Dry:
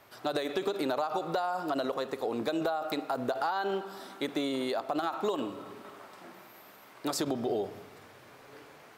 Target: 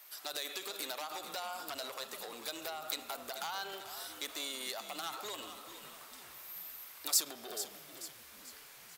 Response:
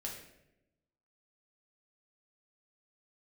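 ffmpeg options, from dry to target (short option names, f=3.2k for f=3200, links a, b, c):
-filter_complex "[0:a]aeval=exprs='0.1*sin(PI/2*1.41*val(0)/0.1)':c=same,aderivative,asplit=6[a][b][c][d][e][f];[b]adelay=440,afreqshift=-82,volume=-11dB[g];[c]adelay=880,afreqshift=-164,volume=-17.9dB[h];[d]adelay=1320,afreqshift=-246,volume=-24.9dB[i];[e]adelay=1760,afreqshift=-328,volume=-31.8dB[j];[f]adelay=2200,afreqshift=-410,volume=-38.7dB[k];[a][g][h][i][j][k]amix=inputs=6:normalize=0,volume=2dB"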